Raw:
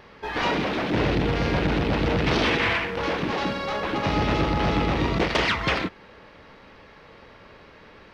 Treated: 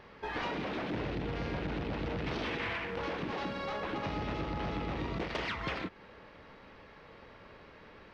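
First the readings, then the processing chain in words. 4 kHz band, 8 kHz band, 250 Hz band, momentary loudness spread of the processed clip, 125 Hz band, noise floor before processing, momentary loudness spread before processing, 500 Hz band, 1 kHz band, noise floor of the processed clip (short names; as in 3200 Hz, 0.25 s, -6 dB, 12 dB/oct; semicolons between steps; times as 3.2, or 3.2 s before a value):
-14.0 dB, -16.0 dB, -12.5 dB, 18 LU, -12.5 dB, -50 dBFS, 5 LU, -12.0 dB, -12.0 dB, -55 dBFS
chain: high shelf 5400 Hz -7 dB; compressor 4:1, threshold -29 dBFS, peak gain reduction 9.5 dB; gain -5 dB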